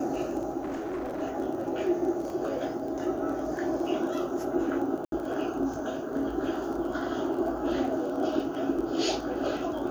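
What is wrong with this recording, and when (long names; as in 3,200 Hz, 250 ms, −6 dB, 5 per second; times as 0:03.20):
surface crackle 19 per second −36 dBFS
0:00.62–0:01.23: clipping −30 dBFS
0:02.30: drop-out 2.1 ms
0:05.05–0:05.12: drop-out 72 ms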